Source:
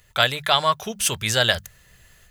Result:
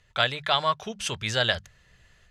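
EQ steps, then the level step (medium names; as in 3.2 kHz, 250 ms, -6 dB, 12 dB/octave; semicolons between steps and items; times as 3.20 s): low-pass 5.2 kHz 12 dB/octave; -4.5 dB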